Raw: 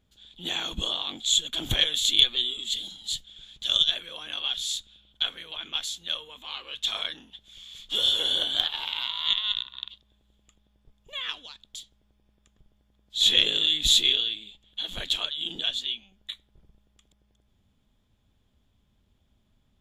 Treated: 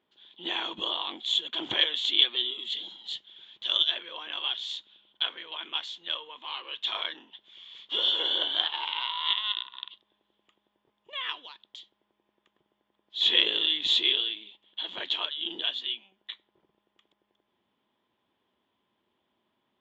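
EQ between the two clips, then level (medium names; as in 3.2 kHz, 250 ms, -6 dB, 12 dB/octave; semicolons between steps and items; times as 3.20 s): distance through air 240 m; cabinet simulation 350–8500 Hz, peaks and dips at 350 Hz +7 dB, 980 Hz +9 dB, 1.9 kHz +4 dB, 3 kHz +5 dB; 0.0 dB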